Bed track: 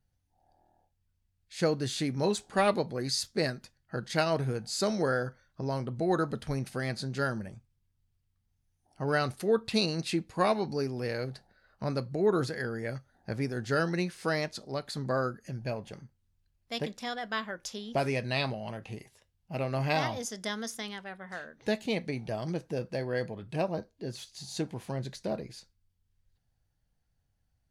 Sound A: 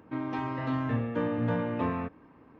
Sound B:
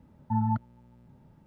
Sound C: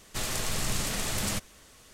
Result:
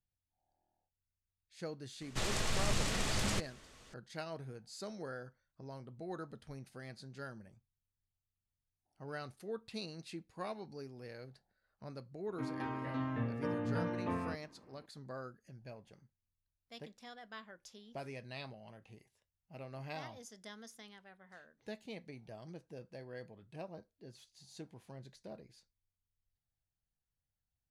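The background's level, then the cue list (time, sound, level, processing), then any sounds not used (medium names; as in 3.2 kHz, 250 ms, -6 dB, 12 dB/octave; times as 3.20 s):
bed track -16 dB
2.01 s: add C -2.5 dB + distance through air 59 m
12.27 s: add A -7.5 dB
not used: B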